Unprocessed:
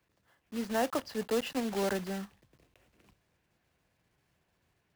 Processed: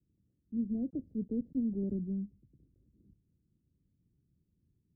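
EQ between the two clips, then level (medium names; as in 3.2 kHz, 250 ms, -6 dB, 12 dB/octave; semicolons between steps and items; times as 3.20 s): inverse Chebyshev low-pass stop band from 1 kHz, stop band 60 dB; +3.5 dB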